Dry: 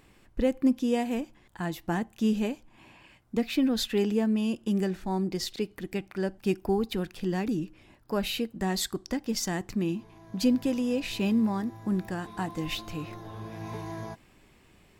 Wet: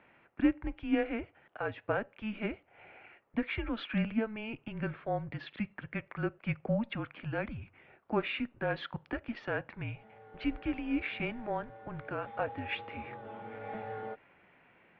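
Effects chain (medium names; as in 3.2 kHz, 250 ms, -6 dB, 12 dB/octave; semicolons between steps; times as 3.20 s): mistuned SSB -220 Hz 450–2900 Hz; Chebyshev shaper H 3 -30 dB, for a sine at -19 dBFS; trim +2.5 dB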